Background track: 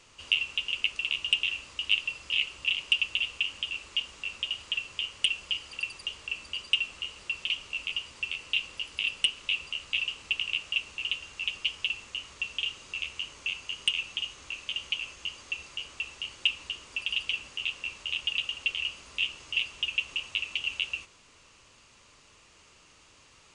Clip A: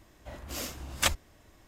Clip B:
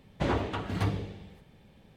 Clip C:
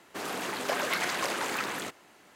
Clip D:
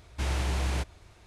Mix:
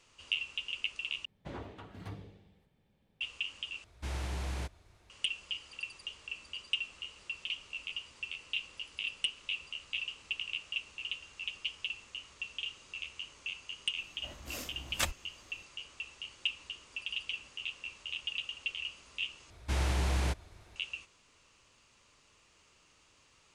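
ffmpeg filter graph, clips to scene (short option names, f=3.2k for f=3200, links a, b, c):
-filter_complex "[4:a]asplit=2[a][b];[0:a]volume=-7.5dB,asplit=4[c][d][e][f];[c]atrim=end=1.254[g];[2:a]atrim=end=1.96,asetpts=PTS-STARTPTS,volume=-15.5dB[h];[d]atrim=start=3.206:end=3.844[i];[a]atrim=end=1.26,asetpts=PTS-STARTPTS,volume=-8dB[j];[e]atrim=start=5.096:end=19.504[k];[b]atrim=end=1.26,asetpts=PTS-STARTPTS,volume=-1.5dB[l];[f]atrim=start=20.756[m];[1:a]atrim=end=1.67,asetpts=PTS-STARTPTS,volume=-6dB,afade=t=in:d=0.004:c=hsin,afade=t=out:st=1.666:d=0.004:c=hsin,adelay=13970[n];[g][h]acrossfade=d=0.004:c1=hsin:c2=hsin[o];[o][i]acrossfade=d=0.004:c1=hsin:c2=hsin[p];[p][j]acrossfade=d=0.004:c1=hsin:c2=hsin[q];[q][k]acrossfade=d=0.004:c1=hsin:c2=hsin[r];[r][l]acrossfade=d=0.004:c1=hsin:c2=hsin[s];[s][m]acrossfade=d=0.004:c1=hsin:c2=hsin[t];[t][n]amix=inputs=2:normalize=0"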